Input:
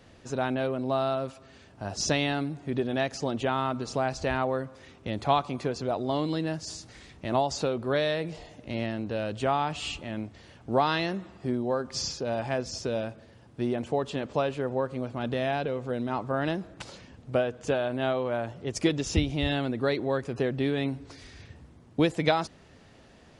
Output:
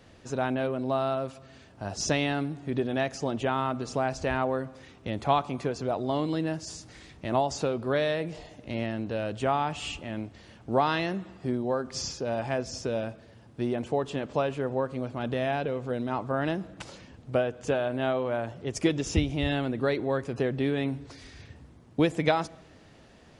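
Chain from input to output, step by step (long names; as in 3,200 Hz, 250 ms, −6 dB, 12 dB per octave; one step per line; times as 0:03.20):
dynamic equaliser 4,200 Hz, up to −5 dB, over −51 dBFS, Q 2.5
on a send: convolution reverb RT60 1.1 s, pre-delay 7 ms, DRR 21.5 dB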